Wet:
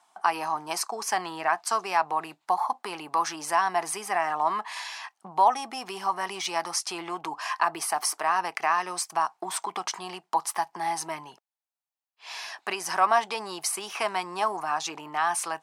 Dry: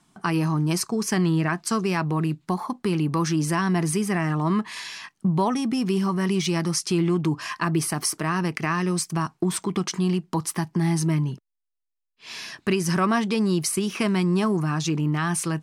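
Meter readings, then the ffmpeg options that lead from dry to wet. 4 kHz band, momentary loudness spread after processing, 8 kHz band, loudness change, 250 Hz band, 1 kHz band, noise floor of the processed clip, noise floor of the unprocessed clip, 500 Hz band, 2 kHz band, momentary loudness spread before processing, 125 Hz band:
-2.0 dB, 9 LU, -2.5 dB, -4.0 dB, -20.5 dB, +5.0 dB, -82 dBFS, -77 dBFS, -5.0 dB, -0.5 dB, 5 LU, -29.0 dB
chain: -af "highpass=f=780:t=q:w=3.9,volume=0.75"

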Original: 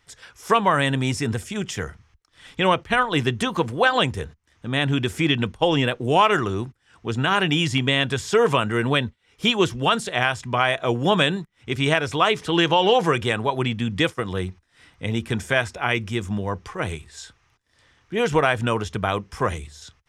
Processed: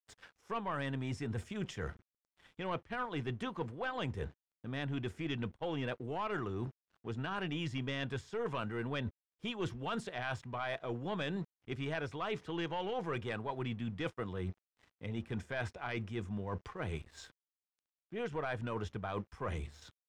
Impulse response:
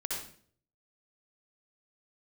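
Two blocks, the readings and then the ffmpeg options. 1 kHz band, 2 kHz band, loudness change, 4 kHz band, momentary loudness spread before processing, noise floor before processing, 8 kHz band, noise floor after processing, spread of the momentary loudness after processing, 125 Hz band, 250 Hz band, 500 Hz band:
-19.0 dB, -18.5 dB, -17.5 dB, -22.0 dB, 12 LU, -65 dBFS, -22.5 dB, under -85 dBFS, 7 LU, -14.0 dB, -15.5 dB, -17.0 dB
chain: -af "aeval=exprs='(tanh(3.16*val(0)+0.3)-tanh(0.3))/3.16':c=same,aeval=exprs='sgn(val(0))*max(abs(val(0))-0.00335,0)':c=same,aemphasis=mode=reproduction:type=75kf,areverse,acompressor=threshold=0.02:ratio=6,areverse,volume=0.794"

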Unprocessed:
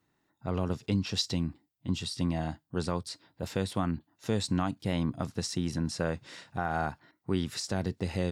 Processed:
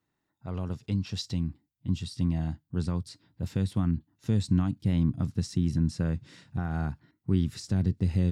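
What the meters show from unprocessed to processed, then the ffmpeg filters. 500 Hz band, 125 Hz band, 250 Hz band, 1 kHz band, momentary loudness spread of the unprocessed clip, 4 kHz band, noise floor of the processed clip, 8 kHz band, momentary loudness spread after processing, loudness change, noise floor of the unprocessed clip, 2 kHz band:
-6.0 dB, +6.0 dB, +3.0 dB, -8.5 dB, 7 LU, -6.0 dB, -81 dBFS, -6.0 dB, 10 LU, +2.5 dB, -77 dBFS, -7.0 dB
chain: -af "asubboost=boost=6.5:cutoff=240,volume=0.501"

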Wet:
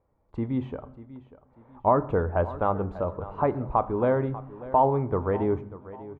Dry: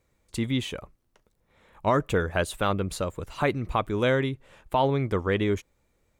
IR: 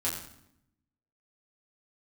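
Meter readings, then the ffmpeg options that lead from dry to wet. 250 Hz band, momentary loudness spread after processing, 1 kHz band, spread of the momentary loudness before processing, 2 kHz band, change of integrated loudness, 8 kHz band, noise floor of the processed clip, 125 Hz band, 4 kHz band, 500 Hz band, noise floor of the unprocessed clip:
-0.5 dB, 18 LU, +3.5 dB, 8 LU, -9.5 dB, +0.5 dB, under -35 dB, -66 dBFS, -1.0 dB, under -20 dB, +1.5 dB, -71 dBFS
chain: -filter_complex "[0:a]lowpass=f=900:t=q:w=2.2,aecho=1:1:592|1184|1776:0.15|0.0509|0.0173,asplit=2[s0][s1];[1:a]atrim=start_sample=2205[s2];[s1][s2]afir=irnorm=-1:irlink=0,volume=0.158[s3];[s0][s3]amix=inputs=2:normalize=0,volume=0.708"

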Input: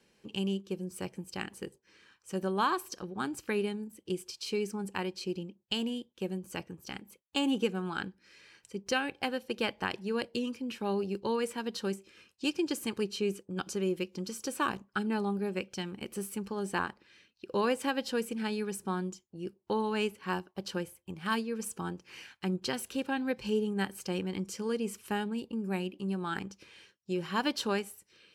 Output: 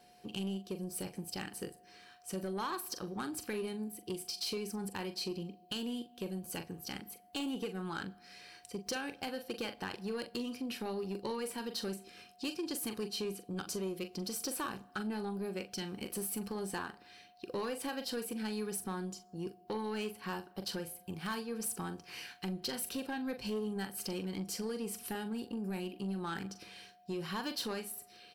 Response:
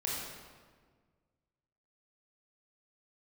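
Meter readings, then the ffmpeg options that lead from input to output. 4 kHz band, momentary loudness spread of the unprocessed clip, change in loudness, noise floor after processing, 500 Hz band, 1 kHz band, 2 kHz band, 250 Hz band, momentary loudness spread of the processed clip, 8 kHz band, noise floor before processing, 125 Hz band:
-3.0 dB, 10 LU, -5.0 dB, -61 dBFS, -6.0 dB, -7.0 dB, -7.0 dB, -5.0 dB, 6 LU, +1.5 dB, -72 dBFS, -4.5 dB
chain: -filter_complex "[0:a]acompressor=threshold=0.0158:ratio=3,aexciter=amount=1.9:drive=2.5:freq=3900,asplit=2[s0][s1];[s1]adelay=42,volume=0.282[s2];[s0][s2]amix=inputs=2:normalize=0,asoftclip=type=tanh:threshold=0.0266,aeval=exprs='val(0)+0.000708*sin(2*PI*720*n/s)':c=same,asplit=2[s3][s4];[1:a]atrim=start_sample=2205,asetrate=61740,aresample=44100[s5];[s4][s5]afir=irnorm=-1:irlink=0,volume=0.0794[s6];[s3][s6]amix=inputs=2:normalize=0,volume=1.12"

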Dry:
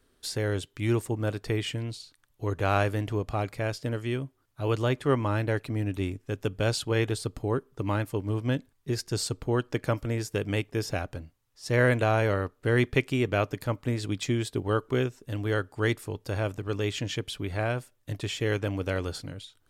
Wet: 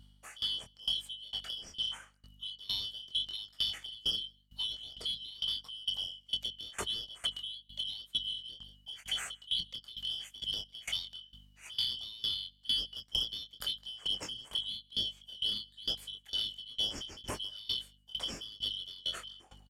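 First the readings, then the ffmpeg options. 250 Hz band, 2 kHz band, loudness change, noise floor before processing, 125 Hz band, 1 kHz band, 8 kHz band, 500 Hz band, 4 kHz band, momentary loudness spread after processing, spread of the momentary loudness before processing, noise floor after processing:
-26.0 dB, -18.0 dB, -6.5 dB, -69 dBFS, -28.5 dB, -19.5 dB, -7.0 dB, -27.5 dB, +8.5 dB, 8 LU, 8 LU, -65 dBFS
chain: -filter_complex "[0:a]afftfilt=real='real(if(lt(b,272),68*(eq(floor(b/68),0)*2+eq(floor(b/68),1)*3+eq(floor(b/68),2)*0+eq(floor(b/68),3)*1)+mod(b,68),b),0)':imag='imag(if(lt(b,272),68*(eq(floor(b/68),0)*2+eq(floor(b/68),1)*3+eq(floor(b/68),2)*0+eq(floor(b/68),3)*1)+mod(b,68),b),0)':win_size=2048:overlap=0.75,equalizer=f=150:t=o:w=0.28:g=-7,dynaudnorm=f=440:g=13:m=2.37,asplit=2[s0][s1];[s1]alimiter=limit=0.299:level=0:latency=1:release=321,volume=0.708[s2];[s0][s2]amix=inputs=2:normalize=0,acrossover=split=170[s3][s4];[s4]acompressor=threshold=0.0708:ratio=8[s5];[s3][s5]amix=inputs=2:normalize=0,flanger=delay=20:depth=5.4:speed=0.86,aeval=exprs='val(0)+0.00224*(sin(2*PI*50*n/s)+sin(2*PI*2*50*n/s)/2+sin(2*PI*3*50*n/s)/3+sin(2*PI*4*50*n/s)/4+sin(2*PI*5*50*n/s)/5)':c=same,asoftclip=type=tanh:threshold=0.0944,asplit=2[s6][s7];[s7]aecho=0:1:161:0.0708[s8];[s6][s8]amix=inputs=2:normalize=0,aeval=exprs='val(0)*pow(10,-22*if(lt(mod(2.2*n/s,1),2*abs(2.2)/1000),1-mod(2.2*n/s,1)/(2*abs(2.2)/1000),(mod(2.2*n/s,1)-2*abs(2.2)/1000)/(1-2*abs(2.2)/1000))/20)':c=same"

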